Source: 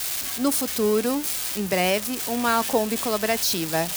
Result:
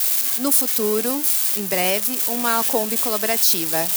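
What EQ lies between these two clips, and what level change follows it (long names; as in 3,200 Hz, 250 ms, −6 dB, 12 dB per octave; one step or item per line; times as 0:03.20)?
high-pass filter 180 Hz 12 dB per octave
high-shelf EQ 8,000 Hz +11.5 dB
0.0 dB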